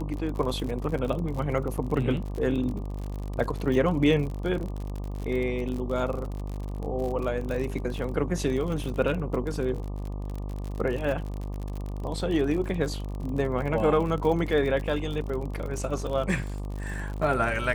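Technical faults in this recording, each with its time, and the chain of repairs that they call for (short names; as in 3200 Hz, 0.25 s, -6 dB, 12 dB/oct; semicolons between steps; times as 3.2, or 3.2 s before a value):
buzz 50 Hz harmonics 24 -33 dBFS
crackle 54/s -32 dBFS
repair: de-click; de-hum 50 Hz, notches 24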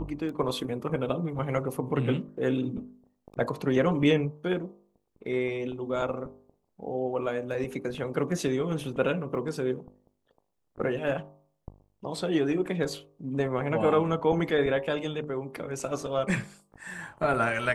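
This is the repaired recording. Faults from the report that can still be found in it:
none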